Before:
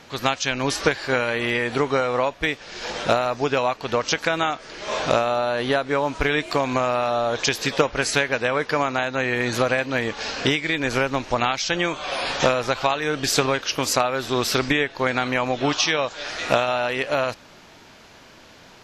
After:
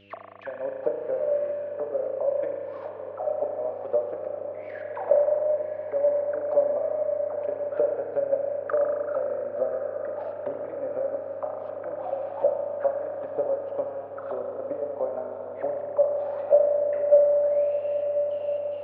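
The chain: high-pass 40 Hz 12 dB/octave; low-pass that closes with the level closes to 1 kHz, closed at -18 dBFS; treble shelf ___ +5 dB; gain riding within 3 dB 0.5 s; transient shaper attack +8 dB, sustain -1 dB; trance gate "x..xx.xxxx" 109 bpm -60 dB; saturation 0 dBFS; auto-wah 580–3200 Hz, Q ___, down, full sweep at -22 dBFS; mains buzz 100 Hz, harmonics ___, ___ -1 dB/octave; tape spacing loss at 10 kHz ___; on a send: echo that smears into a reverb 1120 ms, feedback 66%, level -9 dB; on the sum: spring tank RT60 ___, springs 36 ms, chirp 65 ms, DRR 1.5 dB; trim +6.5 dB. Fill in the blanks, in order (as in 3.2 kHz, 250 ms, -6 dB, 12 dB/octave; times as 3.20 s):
3.3 kHz, 19, 6, -63 dBFS, 24 dB, 2.5 s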